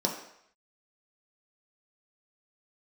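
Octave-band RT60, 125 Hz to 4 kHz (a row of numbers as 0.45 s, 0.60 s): 0.55 s, 0.55 s, 0.70 s, 0.75 s, 0.75 s, 0.70 s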